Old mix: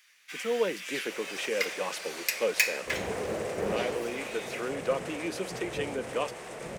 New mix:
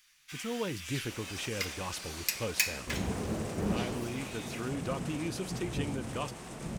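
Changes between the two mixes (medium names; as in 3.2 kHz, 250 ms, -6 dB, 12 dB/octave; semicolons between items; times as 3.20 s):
speech: remove steep high-pass 180 Hz 48 dB/octave; second sound: add bass shelf 160 Hz +10.5 dB; master: add ten-band graphic EQ 250 Hz +5 dB, 500 Hz -11 dB, 2 kHz -7 dB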